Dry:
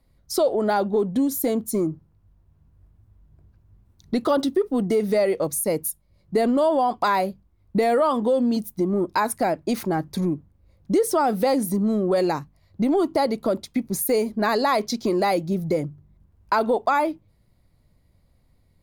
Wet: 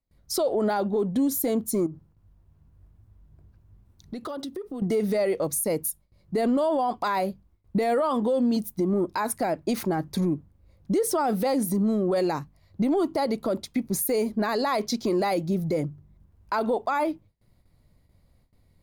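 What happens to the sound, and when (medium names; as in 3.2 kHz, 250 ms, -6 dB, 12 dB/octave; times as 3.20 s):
1.86–4.82 s: compression, threshold -32 dBFS
whole clip: gate with hold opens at -52 dBFS; peak limiter -17.5 dBFS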